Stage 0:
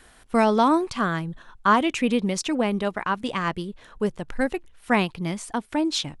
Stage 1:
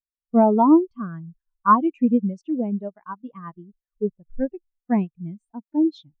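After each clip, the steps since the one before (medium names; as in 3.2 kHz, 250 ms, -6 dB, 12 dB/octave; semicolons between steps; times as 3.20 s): spectral contrast expander 2.5:1; trim +2 dB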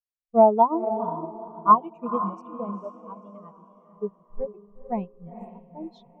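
static phaser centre 680 Hz, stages 4; on a send: echo that smears into a reverb 481 ms, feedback 42%, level -6.5 dB; on the sum: upward expansion 1.5:1, over -41 dBFS; trim +4.5 dB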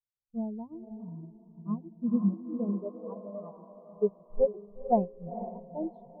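low-pass sweep 120 Hz -> 630 Hz, 1.48–3.39 s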